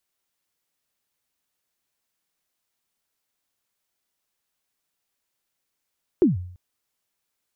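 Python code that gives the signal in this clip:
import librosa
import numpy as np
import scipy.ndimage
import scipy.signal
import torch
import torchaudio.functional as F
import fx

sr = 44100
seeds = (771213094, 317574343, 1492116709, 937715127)

y = fx.drum_kick(sr, seeds[0], length_s=0.34, level_db=-10.5, start_hz=400.0, end_hz=90.0, sweep_ms=148.0, decay_s=0.61, click=False)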